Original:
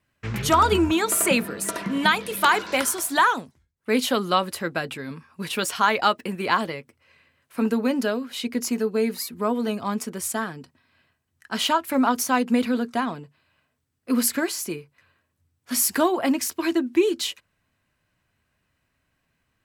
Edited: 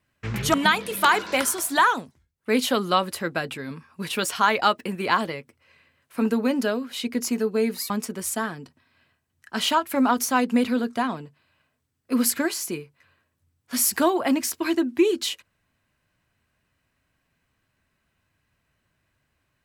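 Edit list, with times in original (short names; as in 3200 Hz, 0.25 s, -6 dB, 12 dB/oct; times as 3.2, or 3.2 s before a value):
0.54–1.94 cut
9.3–9.88 cut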